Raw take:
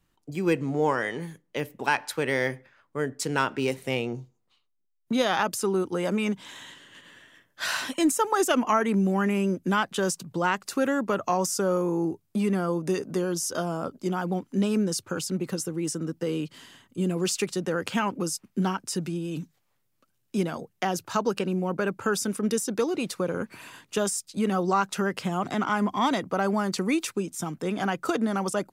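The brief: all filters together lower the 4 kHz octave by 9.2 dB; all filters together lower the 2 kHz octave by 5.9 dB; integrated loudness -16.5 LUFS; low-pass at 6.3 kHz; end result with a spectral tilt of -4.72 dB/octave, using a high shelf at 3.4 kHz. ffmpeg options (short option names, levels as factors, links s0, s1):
-af "lowpass=6300,equalizer=f=2000:t=o:g=-5.5,highshelf=f=3400:g=-6.5,equalizer=f=4000:t=o:g=-5,volume=3.98"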